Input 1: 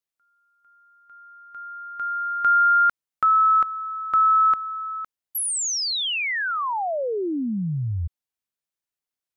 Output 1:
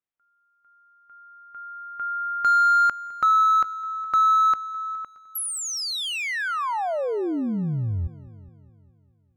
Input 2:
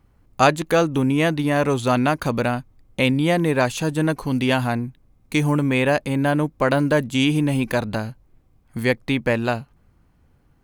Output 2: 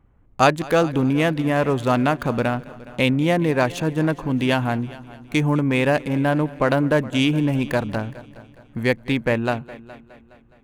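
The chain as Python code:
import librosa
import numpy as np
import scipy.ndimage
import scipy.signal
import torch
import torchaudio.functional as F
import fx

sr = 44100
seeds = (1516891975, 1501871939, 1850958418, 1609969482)

y = fx.wiener(x, sr, points=9)
y = fx.echo_heads(y, sr, ms=208, heads='first and second', feedback_pct=44, wet_db=-21.5)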